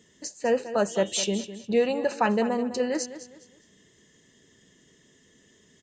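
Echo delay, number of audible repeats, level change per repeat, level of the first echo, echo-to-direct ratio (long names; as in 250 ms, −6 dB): 205 ms, 3, −10.5 dB, −13.0 dB, −12.5 dB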